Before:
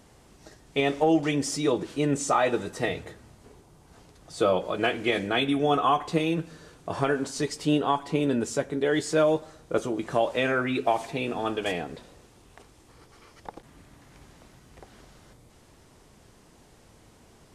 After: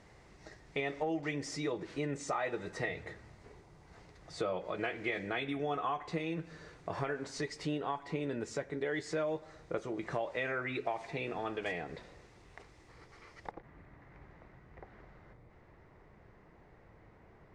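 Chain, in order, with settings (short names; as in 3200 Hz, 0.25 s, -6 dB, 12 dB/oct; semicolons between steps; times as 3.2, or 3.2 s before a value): thirty-one-band EQ 250 Hz -7 dB, 2000 Hz +8 dB, 3150 Hz -5 dB; compressor 2.5:1, threshold -33 dBFS, peak gain reduction 10.5 dB; LPF 5300 Hz 12 dB/oct, from 13.51 s 1800 Hz; gain -3 dB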